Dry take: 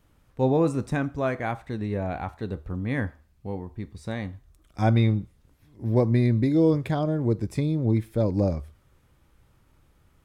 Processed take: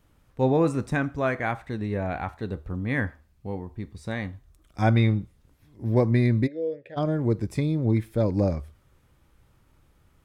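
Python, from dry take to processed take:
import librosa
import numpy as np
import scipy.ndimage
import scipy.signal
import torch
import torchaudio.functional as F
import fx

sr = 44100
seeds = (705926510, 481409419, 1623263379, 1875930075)

y = fx.vowel_filter(x, sr, vowel='e', at=(6.46, 6.96), fade=0.02)
y = fx.dynamic_eq(y, sr, hz=1800.0, q=1.2, threshold_db=-44.0, ratio=4.0, max_db=5)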